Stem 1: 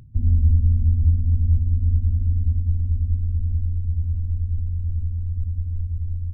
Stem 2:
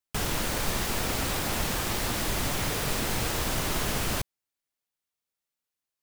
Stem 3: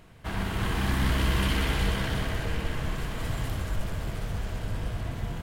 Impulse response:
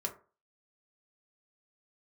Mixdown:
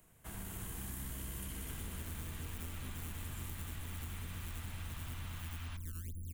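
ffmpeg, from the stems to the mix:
-filter_complex "[0:a]asoftclip=type=tanh:threshold=-23.5dB,lowshelf=frequency=340:gain=-10,acrusher=samples=18:mix=1:aa=0.000001:lfo=1:lforange=28.8:lforate=2.1,adelay=1550,volume=-5dB[link_01];[1:a]highpass=frequency=870:width=0.5412,highpass=frequency=870:width=1.3066,lowpass=frequency=3500:width=0.5412,lowpass=frequency=3500:width=1.3066,adelay=1550,volume=-13.5dB,asplit=2[link_02][link_03];[link_03]volume=-5.5dB[link_04];[2:a]volume=-14dB[link_05];[3:a]atrim=start_sample=2205[link_06];[link_04][link_06]afir=irnorm=-1:irlink=0[link_07];[link_01][link_02][link_05][link_07]amix=inputs=4:normalize=0,acrossover=split=93|360|3000[link_08][link_09][link_10][link_11];[link_08]acompressor=threshold=-41dB:ratio=4[link_12];[link_09]acompressor=threshold=-44dB:ratio=4[link_13];[link_10]acompressor=threshold=-53dB:ratio=4[link_14];[link_11]acompressor=threshold=-55dB:ratio=4[link_15];[link_12][link_13][link_14][link_15]amix=inputs=4:normalize=0,aexciter=amount=7.9:drive=3.2:freq=6700,acompressor=threshold=-39dB:ratio=6"

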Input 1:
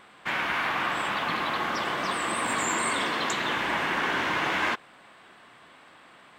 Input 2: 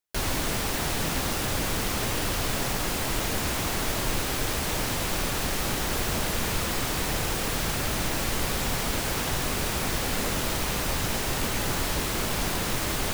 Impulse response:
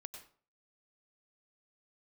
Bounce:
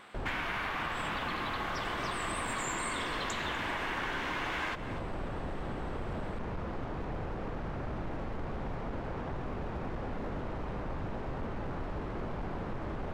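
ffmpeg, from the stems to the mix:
-filter_complex "[0:a]volume=-2.5dB,asplit=3[link_01][link_02][link_03];[link_02]volume=-6.5dB[link_04];[link_03]volume=-17.5dB[link_05];[1:a]lowpass=1100,asoftclip=type=hard:threshold=-25.5dB,volume=-5dB[link_06];[2:a]atrim=start_sample=2205[link_07];[link_04][link_07]afir=irnorm=-1:irlink=0[link_08];[link_05]aecho=0:1:246:1[link_09];[link_01][link_06][link_08][link_09]amix=inputs=4:normalize=0,acompressor=threshold=-32dB:ratio=6"

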